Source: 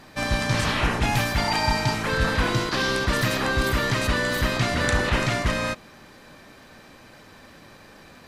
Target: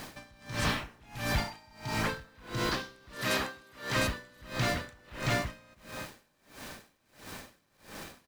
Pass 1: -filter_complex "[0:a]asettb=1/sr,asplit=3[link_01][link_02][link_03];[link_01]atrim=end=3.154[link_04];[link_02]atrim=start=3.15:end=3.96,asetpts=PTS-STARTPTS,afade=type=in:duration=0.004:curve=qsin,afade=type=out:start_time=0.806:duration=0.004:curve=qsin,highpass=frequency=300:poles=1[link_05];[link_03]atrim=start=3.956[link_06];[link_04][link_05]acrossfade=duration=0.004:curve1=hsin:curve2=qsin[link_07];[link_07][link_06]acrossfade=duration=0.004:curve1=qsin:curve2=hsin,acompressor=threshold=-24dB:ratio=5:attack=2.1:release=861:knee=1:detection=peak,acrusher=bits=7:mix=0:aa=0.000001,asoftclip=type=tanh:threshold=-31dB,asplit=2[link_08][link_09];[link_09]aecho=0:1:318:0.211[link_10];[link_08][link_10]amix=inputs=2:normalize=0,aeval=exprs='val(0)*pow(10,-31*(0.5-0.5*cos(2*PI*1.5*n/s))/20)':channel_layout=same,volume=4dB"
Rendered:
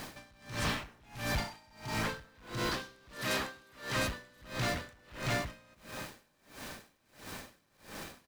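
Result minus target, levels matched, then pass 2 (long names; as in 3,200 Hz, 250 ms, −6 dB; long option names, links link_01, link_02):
soft clipping: distortion +11 dB
-filter_complex "[0:a]asettb=1/sr,asplit=3[link_01][link_02][link_03];[link_01]atrim=end=3.154[link_04];[link_02]atrim=start=3.15:end=3.96,asetpts=PTS-STARTPTS,afade=type=in:duration=0.004:curve=qsin,afade=type=out:start_time=0.806:duration=0.004:curve=qsin,highpass=frequency=300:poles=1[link_05];[link_03]atrim=start=3.956[link_06];[link_04][link_05]acrossfade=duration=0.004:curve1=hsin:curve2=qsin[link_07];[link_07][link_06]acrossfade=duration=0.004:curve1=qsin:curve2=hsin,acompressor=threshold=-24dB:ratio=5:attack=2.1:release=861:knee=1:detection=peak,acrusher=bits=7:mix=0:aa=0.000001,asoftclip=type=tanh:threshold=-22dB,asplit=2[link_08][link_09];[link_09]aecho=0:1:318:0.211[link_10];[link_08][link_10]amix=inputs=2:normalize=0,aeval=exprs='val(0)*pow(10,-31*(0.5-0.5*cos(2*PI*1.5*n/s))/20)':channel_layout=same,volume=4dB"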